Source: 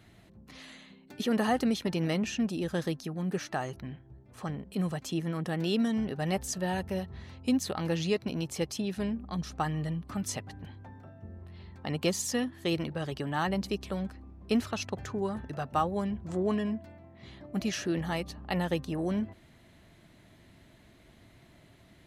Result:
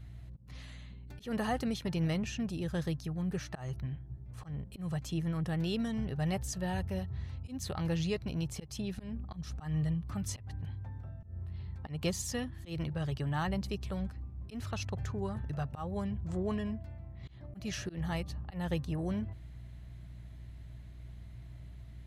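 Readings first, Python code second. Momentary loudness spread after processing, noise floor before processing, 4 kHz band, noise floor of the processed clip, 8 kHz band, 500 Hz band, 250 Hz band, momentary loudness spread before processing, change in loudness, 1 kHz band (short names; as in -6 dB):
16 LU, -58 dBFS, -6.0 dB, -49 dBFS, -5.0 dB, -7.0 dB, -5.0 dB, 18 LU, -4.5 dB, -7.5 dB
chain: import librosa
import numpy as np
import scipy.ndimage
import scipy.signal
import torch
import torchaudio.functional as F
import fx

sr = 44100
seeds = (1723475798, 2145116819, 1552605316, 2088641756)

y = fx.add_hum(x, sr, base_hz=60, snr_db=20)
y = fx.low_shelf_res(y, sr, hz=170.0, db=9.5, q=1.5)
y = fx.auto_swell(y, sr, attack_ms=160.0)
y = F.gain(torch.from_numpy(y), -5.0).numpy()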